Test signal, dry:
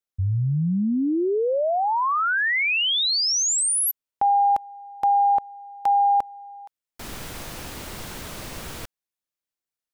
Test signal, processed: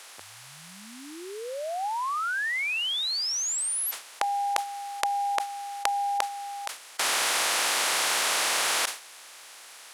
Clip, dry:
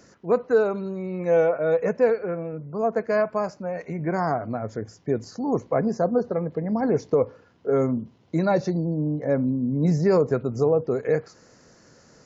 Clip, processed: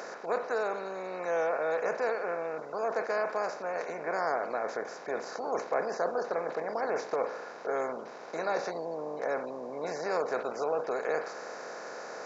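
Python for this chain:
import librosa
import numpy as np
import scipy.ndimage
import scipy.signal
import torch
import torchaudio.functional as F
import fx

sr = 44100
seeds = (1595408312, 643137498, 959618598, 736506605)

y = fx.bin_compress(x, sr, power=0.4)
y = scipy.signal.sosfilt(scipy.signal.butter(2, 700.0, 'highpass', fs=sr, output='sos'), y)
y = fx.sustainer(y, sr, db_per_s=140.0)
y = F.gain(torch.from_numpy(y), -8.0).numpy()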